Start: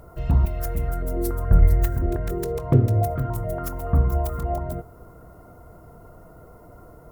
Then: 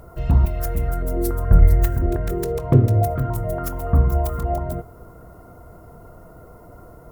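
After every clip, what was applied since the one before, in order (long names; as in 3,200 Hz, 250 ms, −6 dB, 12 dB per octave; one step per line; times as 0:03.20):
hum removal 150.3 Hz, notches 22
level +3 dB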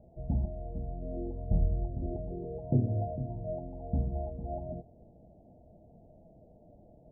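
Chebyshev low-pass with heavy ripple 860 Hz, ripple 9 dB
level −7.5 dB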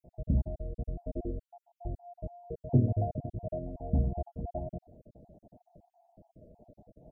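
time-frequency cells dropped at random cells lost 51%
level +3 dB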